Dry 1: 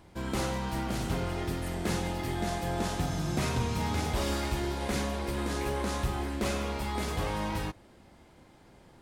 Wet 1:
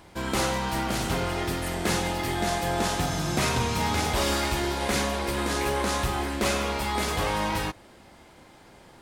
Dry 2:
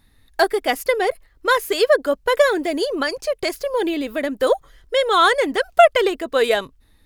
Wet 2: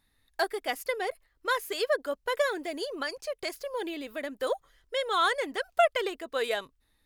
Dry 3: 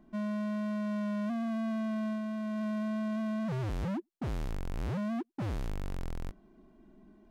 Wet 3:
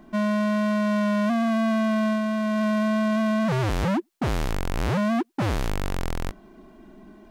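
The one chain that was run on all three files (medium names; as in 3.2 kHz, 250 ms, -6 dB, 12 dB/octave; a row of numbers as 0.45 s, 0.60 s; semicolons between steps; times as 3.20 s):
bass shelf 410 Hz -7.5 dB; peak normalisation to -12 dBFS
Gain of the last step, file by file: +8.5 dB, -9.5 dB, +15.5 dB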